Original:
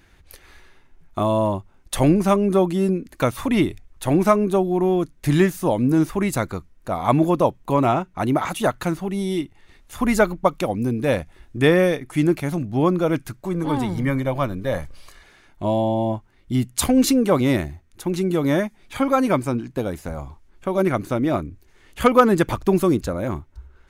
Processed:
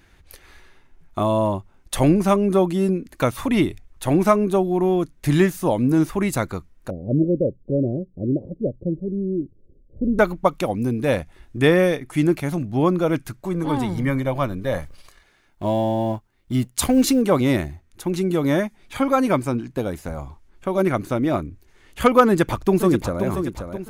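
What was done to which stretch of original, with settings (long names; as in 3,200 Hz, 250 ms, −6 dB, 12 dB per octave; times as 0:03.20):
0:06.90–0:10.19: Chebyshev low-pass filter 560 Hz, order 6
0:14.80–0:17.22: mu-law and A-law mismatch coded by A
0:22.27–0:23.24: delay throw 530 ms, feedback 45%, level −8 dB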